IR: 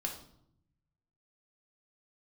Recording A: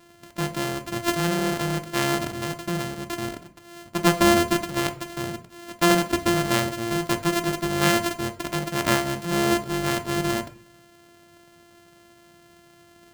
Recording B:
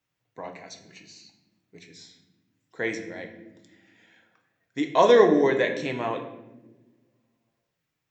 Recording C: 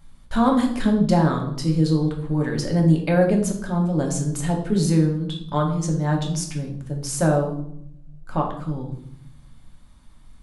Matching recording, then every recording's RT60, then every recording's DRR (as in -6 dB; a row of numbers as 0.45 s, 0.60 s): C; 0.55 s, no single decay rate, 0.70 s; 7.5 dB, 3.5 dB, 0.5 dB